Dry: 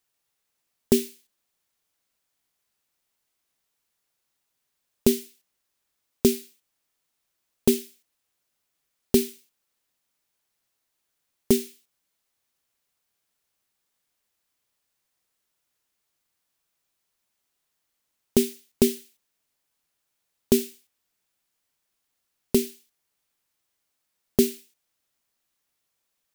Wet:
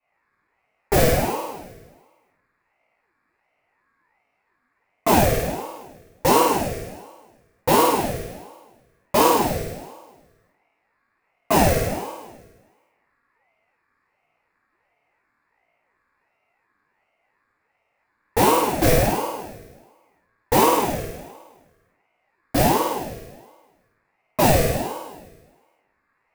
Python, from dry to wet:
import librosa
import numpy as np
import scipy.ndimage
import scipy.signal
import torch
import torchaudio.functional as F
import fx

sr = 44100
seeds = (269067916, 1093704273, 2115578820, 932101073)

p1 = fx.wiener(x, sr, points=15)
p2 = fx.band_shelf(p1, sr, hz=1600.0, db=16.0, octaves=1.0)
p3 = fx.doubler(p2, sr, ms=19.0, db=-3.0)
p4 = p3 + fx.room_flutter(p3, sr, wall_m=8.9, rt60_s=1.3, dry=0)
p5 = fx.room_shoebox(p4, sr, seeds[0], volume_m3=110.0, walls='mixed', distance_m=4.6)
p6 = np.clip(p5, -10.0 ** (-8.5 / 20.0), 10.0 ** (-8.5 / 20.0))
p7 = p5 + (p6 * librosa.db_to_amplitude(-9.5))
p8 = fx.ring_lfo(p7, sr, carrier_hz=490.0, swing_pct=50, hz=1.4)
y = p8 * librosa.db_to_amplitude(-10.0)